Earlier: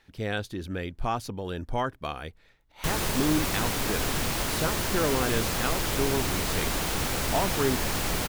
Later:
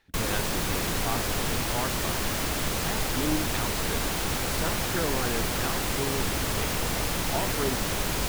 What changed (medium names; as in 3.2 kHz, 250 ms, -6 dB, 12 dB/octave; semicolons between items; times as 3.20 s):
speech -4.0 dB; background: entry -2.70 s